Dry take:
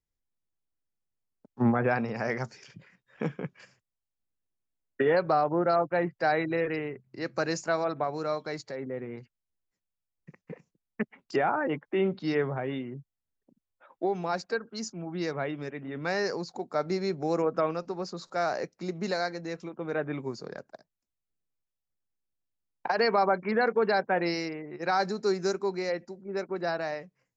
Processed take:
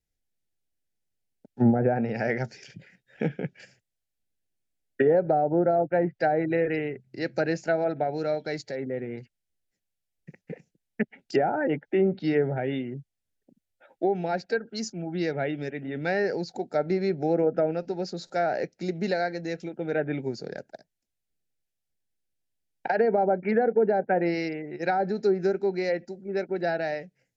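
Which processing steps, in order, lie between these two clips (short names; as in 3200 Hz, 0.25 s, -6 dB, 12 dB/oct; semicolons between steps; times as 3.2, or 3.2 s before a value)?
treble ducked by the level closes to 840 Hz, closed at -21 dBFS; Butterworth band-stop 1100 Hz, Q 1.8; gain +4 dB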